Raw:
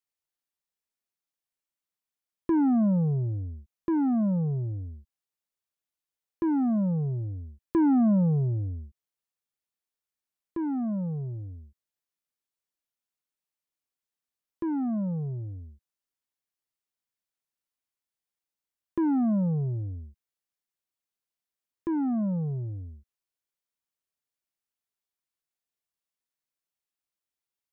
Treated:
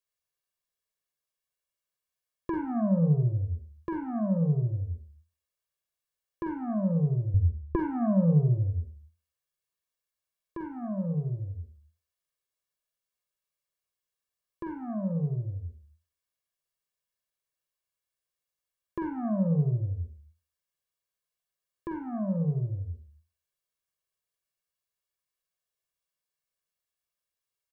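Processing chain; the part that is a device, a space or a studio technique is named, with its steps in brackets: microphone above a desk (comb 1.8 ms, depth 74%; reverberation RT60 0.35 s, pre-delay 40 ms, DRR 3.5 dB); 7.34–7.76 s: tilt EQ -3 dB/octave; trim -2 dB

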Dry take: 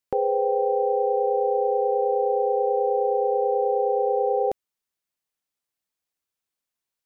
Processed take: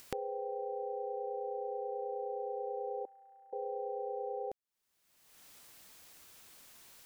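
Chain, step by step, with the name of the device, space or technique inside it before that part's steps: upward and downward compression (upward compressor, threshold -28 dBFS; compression 5:1, threshold -34 dBFS, peak gain reduction 13.5 dB); 3.05–3.53 s: inverse Chebyshev high-pass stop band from 200 Hz, stop band 80 dB; trim -3.5 dB

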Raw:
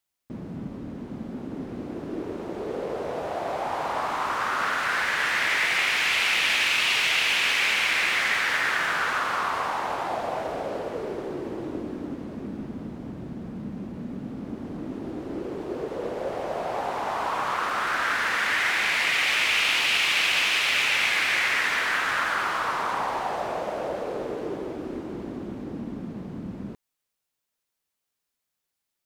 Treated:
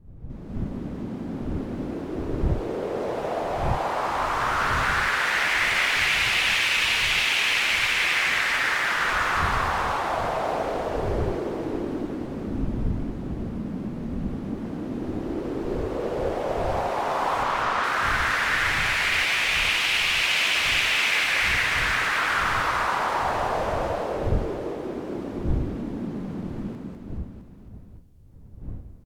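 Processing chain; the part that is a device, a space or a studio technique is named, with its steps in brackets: 17.43–17.84 s: low-pass 6.7 kHz; reverse bouncing-ball echo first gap 200 ms, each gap 1.1×, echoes 5; smartphone video outdoors (wind noise 100 Hz -35 dBFS; level rider gain up to 9.5 dB; trim -8 dB; AAC 96 kbps 44.1 kHz)

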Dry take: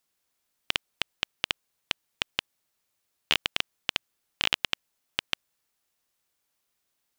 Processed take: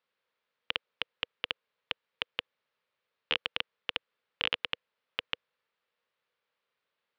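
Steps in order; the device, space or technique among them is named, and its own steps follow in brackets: overdrive pedal into a guitar cabinet (overdrive pedal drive 10 dB, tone 1.8 kHz, clips at -4 dBFS; cabinet simulation 91–4200 Hz, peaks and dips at 310 Hz -9 dB, 490 Hz +8 dB, 740 Hz -7 dB); trim -1.5 dB

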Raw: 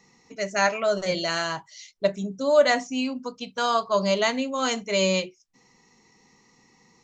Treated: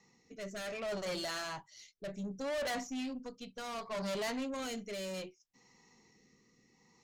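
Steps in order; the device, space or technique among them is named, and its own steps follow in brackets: overdriven rotary cabinet (valve stage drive 30 dB, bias 0.35; rotary cabinet horn 0.65 Hz); trim -4 dB

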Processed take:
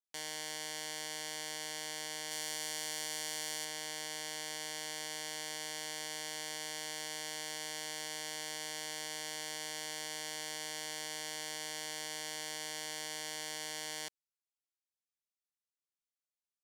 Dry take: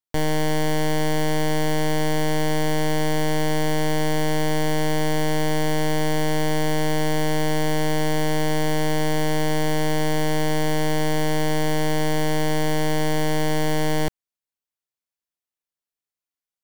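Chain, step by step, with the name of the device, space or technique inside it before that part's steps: 2.31–3.65 s: treble shelf 4.8 kHz +5 dB; piezo pickup straight into a mixer (low-pass 7.2 kHz 12 dB/octave; differentiator); trim -2.5 dB

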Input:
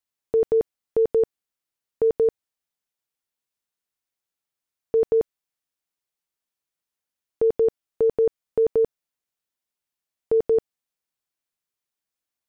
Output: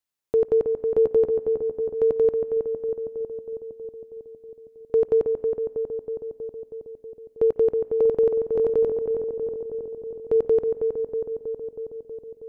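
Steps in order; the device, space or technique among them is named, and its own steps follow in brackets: dub delay into a spring reverb (filtered feedback delay 320 ms, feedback 74%, low-pass 1.3 kHz, level -5 dB; spring tank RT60 2.4 s, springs 54 ms, chirp 45 ms, DRR 19 dB)

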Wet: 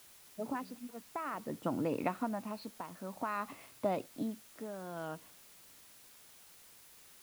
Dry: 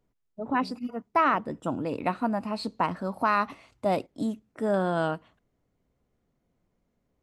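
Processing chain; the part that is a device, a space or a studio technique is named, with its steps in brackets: medium wave at night (band-pass 110–3500 Hz; compression, threshold -28 dBFS, peak gain reduction 10 dB; tremolo 0.53 Hz, depth 73%; whistle 10 kHz -67 dBFS; white noise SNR 18 dB); trim -1 dB

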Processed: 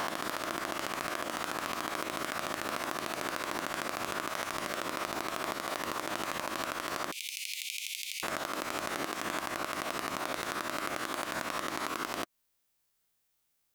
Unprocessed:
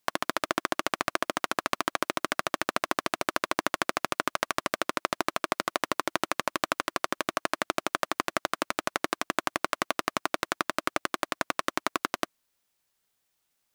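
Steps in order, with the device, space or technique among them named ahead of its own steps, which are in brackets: reverse spectral sustain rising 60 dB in 0.95 s; 7.12–8.23 s: steep high-pass 2.2 kHz 96 dB/octave; ASMR close-microphone chain (bass shelf 140 Hz +5.5 dB; compression 4:1, threshold -26 dBFS, peak gain reduction 8 dB; treble shelf 11 kHz +6 dB); trim -5.5 dB

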